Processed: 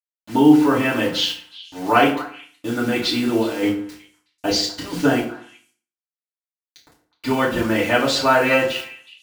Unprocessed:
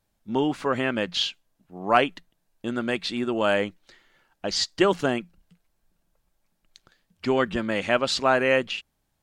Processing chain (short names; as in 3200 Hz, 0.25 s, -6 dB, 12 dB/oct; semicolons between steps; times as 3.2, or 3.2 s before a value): 2.84–4.99 negative-ratio compressor -27 dBFS, ratio -0.5; bit-crush 7-bit; delay with a stepping band-pass 0.123 s, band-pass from 440 Hz, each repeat 1.4 oct, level -11 dB; FDN reverb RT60 0.46 s, low-frequency decay 1.2×, high-frequency decay 0.8×, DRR -7.5 dB; gain -2.5 dB